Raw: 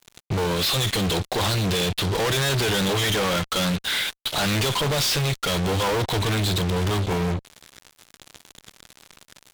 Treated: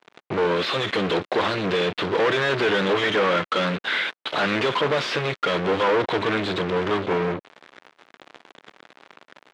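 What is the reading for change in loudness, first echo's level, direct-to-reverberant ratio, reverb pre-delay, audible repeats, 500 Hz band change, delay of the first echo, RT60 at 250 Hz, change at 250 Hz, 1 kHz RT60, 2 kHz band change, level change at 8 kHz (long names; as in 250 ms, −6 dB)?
0.0 dB, no echo audible, no reverb audible, no reverb audible, no echo audible, +4.5 dB, no echo audible, no reverb audible, −0.5 dB, no reverb audible, +3.5 dB, −16.5 dB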